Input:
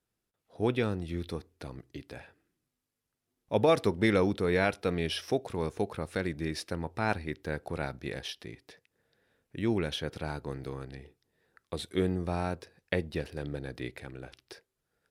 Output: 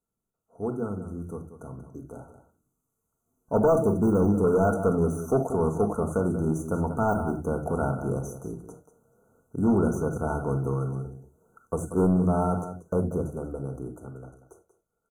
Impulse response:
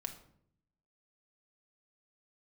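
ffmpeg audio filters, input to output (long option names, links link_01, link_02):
-filter_complex "[0:a]deesser=1,aecho=1:1:186:0.251,dynaudnorm=framelen=220:gausssize=21:maxgain=12dB,asettb=1/sr,asplit=3[link_01][link_02][link_03];[link_01]atrim=end=3.734[link_04];[link_02]atrim=start=3.73:end=4.44,asetpts=PTS-STARTPTS,afade=type=in:duration=0.004:curve=qsin,afade=type=out:start_time=0.706:duration=0.004:curve=qsin,equalizer=frequency=1000:width_type=o:width=1.5:gain=-11.5[link_05];[link_03]atrim=start=4.436[link_06];[link_04][link_05]acrossfade=duration=0.004:curve1=hsin:curve2=qsin[link_07];[link_07][link_06]acrossfade=duration=0.004:curve1=qsin:curve2=hsin[link_08];[1:a]atrim=start_sample=2205,atrim=end_sample=4410[link_09];[link_08][link_09]afir=irnorm=-1:irlink=0,asoftclip=type=tanh:threshold=-15.5dB,afftfilt=real='re*(1-between(b*sr/4096,1500,5900))':imag='im*(1-between(b*sr/4096,1500,5900))':win_size=4096:overlap=0.75"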